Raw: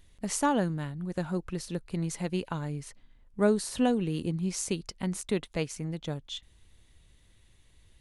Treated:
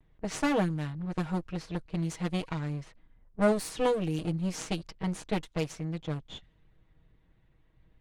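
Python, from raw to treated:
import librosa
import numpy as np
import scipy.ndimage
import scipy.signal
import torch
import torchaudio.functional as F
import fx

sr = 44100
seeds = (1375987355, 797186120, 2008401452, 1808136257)

y = fx.lower_of_two(x, sr, delay_ms=6.3)
y = fx.env_lowpass(y, sr, base_hz=1400.0, full_db=-26.0)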